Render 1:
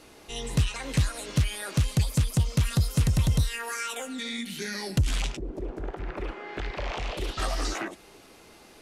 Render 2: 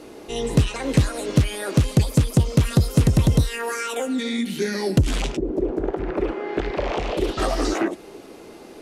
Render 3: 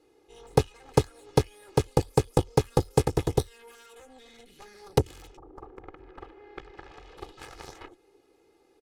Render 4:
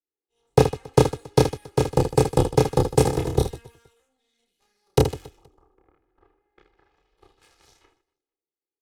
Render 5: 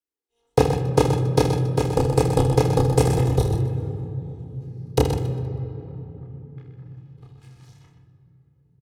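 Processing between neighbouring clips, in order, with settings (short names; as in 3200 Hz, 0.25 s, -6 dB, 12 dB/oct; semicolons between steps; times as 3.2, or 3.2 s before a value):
bell 360 Hz +12 dB 2.2 oct; gain +2.5 dB
added harmonics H 3 -9 dB, 6 -44 dB, 8 -39 dB, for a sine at -4 dBFS; comb 2.4 ms, depth 67%
on a send: reverse bouncing-ball echo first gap 30 ms, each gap 1.6×, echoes 5; on the sum: three-band expander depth 100%
echo 0.126 s -8.5 dB; on a send at -7 dB: reverb RT60 3.5 s, pre-delay 3 ms; on the sum: gain -1.5 dB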